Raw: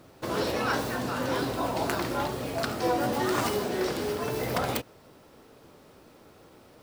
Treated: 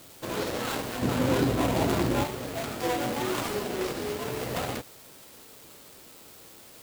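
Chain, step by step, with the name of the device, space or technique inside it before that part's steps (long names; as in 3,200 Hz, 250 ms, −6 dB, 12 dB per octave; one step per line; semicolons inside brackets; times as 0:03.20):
0:01.02–0:02.24: low-shelf EQ 480 Hz +11 dB
budget class-D amplifier (gap after every zero crossing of 0.26 ms; spike at every zero crossing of −31 dBFS)
level −1.5 dB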